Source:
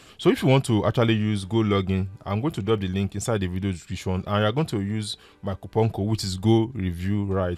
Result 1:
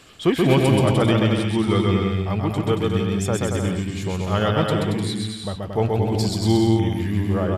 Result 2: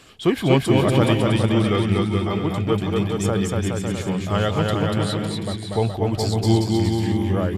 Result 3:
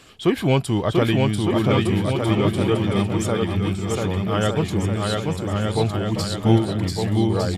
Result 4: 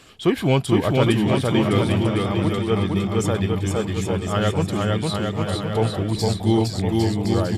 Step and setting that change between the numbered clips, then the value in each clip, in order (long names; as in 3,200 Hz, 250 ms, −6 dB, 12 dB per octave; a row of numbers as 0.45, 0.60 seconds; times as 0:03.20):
bouncing-ball delay, first gap: 130, 240, 690, 460 milliseconds